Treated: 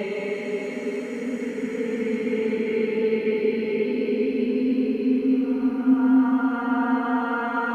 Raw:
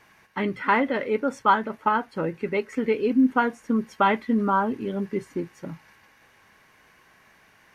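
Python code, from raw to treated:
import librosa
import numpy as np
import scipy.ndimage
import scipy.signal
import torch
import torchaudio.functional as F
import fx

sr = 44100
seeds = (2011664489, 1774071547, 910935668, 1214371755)

y = fx.doppler_pass(x, sr, speed_mps=6, closest_m=3.5, pass_at_s=2.82)
y = fx.paulstretch(y, sr, seeds[0], factor=9.2, window_s=0.5, from_s=2.55)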